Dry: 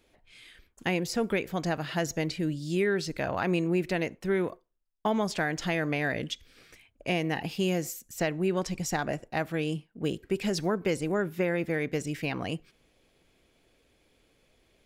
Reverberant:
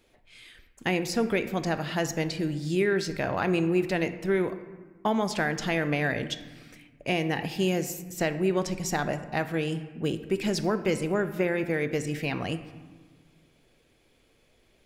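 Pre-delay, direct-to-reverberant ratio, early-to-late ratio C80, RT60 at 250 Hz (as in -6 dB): 5 ms, 10.0 dB, 13.5 dB, 1.9 s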